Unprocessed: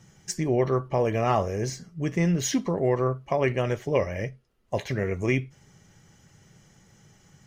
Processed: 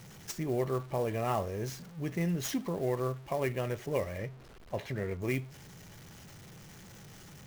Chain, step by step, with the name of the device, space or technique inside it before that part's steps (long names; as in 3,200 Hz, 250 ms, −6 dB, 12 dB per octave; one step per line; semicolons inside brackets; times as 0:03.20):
early CD player with a faulty converter (converter with a step at zero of −38 dBFS; converter with an unsteady clock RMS 0.02 ms)
0:04.18–0:05.22: high-shelf EQ 5,700 Hz −8 dB
level −8.5 dB